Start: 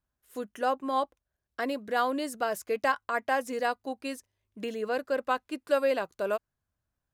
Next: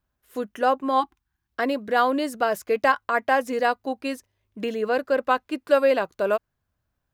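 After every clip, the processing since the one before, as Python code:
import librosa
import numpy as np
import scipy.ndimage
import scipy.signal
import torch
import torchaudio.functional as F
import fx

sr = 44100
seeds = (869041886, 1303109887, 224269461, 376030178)

y = fx.spec_erase(x, sr, start_s=1.01, length_s=0.5, low_hz=370.0, high_hz=750.0)
y = fx.peak_eq(y, sr, hz=8900.0, db=-6.5, octaves=1.5)
y = y * 10.0 ** (7.0 / 20.0)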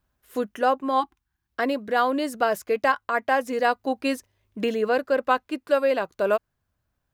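y = fx.rider(x, sr, range_db=4, speed_s=0.5)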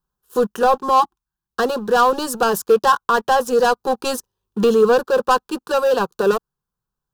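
y = fx.leveller(x, sr, passes=3)
y = fx.fixed_phaser(y, sr, hz=420.0, stages=8)
y = y * 10.0 ** (2.5 / 20.0)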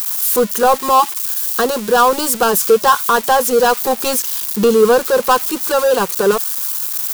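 y = x + 0.5 * 10.0 ** (-15.5 / 20.0) * np.diff(np.sign(x), prepend=np.sign(x[:1]))
y = y * 10.0 ** (3.0 / 20.0)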